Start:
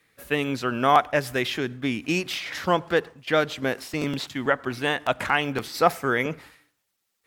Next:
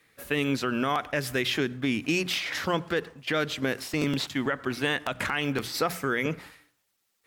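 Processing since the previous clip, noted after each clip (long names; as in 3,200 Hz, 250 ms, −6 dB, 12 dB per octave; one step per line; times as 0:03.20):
mains-hum notches 60/120/180 Hz
dynamic equaliser 760 Hz, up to −7 dB, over −35 dBFS, Q 1.3
brickwall limiter −17.5 dBFS, peak gain reduction 9.5 dB
level +1.5 dB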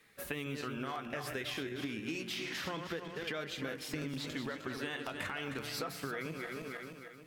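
feedback delay that plays each chunk backwards 154 ms, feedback 62%, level −7 dB
flanger 0.3 Hz, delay 4.5 ms, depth 6.5 ms, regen +62%
downward compressor 6 to 1, threshold −40 dBFS, peak gain reduction 15 dB
level +3 dB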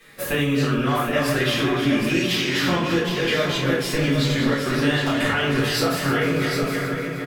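single-tap delay 764 ms −7 dB
rectangular room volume 55 cubic metres, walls mixed, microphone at 1.6 metres
level +8.5 dB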